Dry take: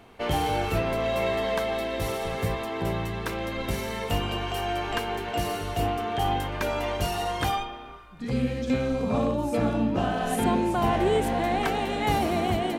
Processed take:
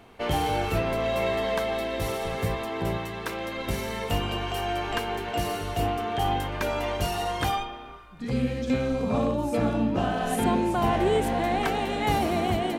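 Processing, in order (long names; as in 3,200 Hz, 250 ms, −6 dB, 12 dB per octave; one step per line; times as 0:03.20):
0:02.97–0:03.67: low-shelf EQ 170 Hz −10 dB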